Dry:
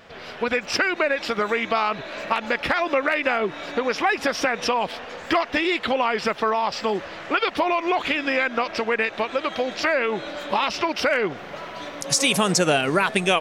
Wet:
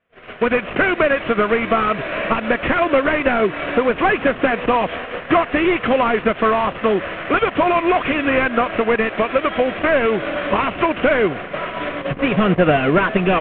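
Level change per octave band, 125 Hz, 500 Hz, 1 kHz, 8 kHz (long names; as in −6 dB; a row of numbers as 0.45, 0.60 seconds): +9.0 dB, +6.5 dB, +4.5 dB, below −40 dB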